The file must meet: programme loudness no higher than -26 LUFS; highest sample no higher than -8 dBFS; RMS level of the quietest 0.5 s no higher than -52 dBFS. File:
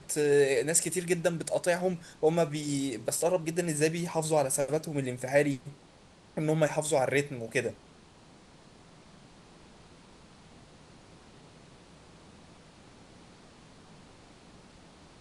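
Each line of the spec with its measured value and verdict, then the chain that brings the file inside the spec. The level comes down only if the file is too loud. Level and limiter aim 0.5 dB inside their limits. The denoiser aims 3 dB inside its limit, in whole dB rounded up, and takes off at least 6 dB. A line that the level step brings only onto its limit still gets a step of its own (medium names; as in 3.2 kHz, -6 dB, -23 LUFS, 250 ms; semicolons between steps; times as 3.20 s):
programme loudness -29.0 LUFS: pass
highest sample -10.5 dBFS: pass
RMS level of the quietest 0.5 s -57 dBFS: pass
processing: none needed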